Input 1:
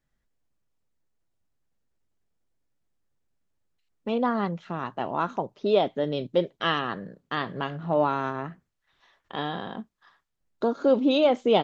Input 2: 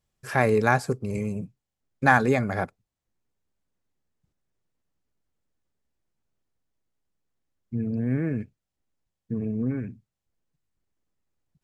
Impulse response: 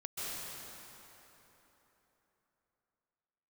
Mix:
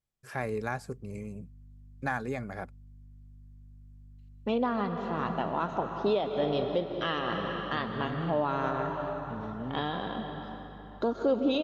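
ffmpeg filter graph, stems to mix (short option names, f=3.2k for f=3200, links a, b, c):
-filter_complex "[0:a]aeval=exprs='val(0)+0.00316*(sin(2*PI*50*n/s)+sin(2*PI*2*50*n/s)/2+sin(2*PI*3*50*n/s)/3+sin(2*PI*4*50*n/s)/4+sin(2*PI*5*50*n/s)/5)':c=same,adelay=400,volume=-2.5dB,asplit=3[a][b][c];[b]volume=-6dB[d];[c]volume=-21.5dB[e];[1:a]volume=-11dB[f];[2:a]atrim=start_sample=2205[g];[d][g]afir=irnorm=-1:irlink=0[h];[e]aecho=0:1:638|1276|1914|2552|3190|3828|4466|5104|5742:1|0.59|0.348|0.205|0.121|0.0715|0.0422|0.0249|0.0147[i];[a][f][h][i]amix=inputs=4:normalize=0,alimiter=limit=-18dB:level=0:latency=1:release=386"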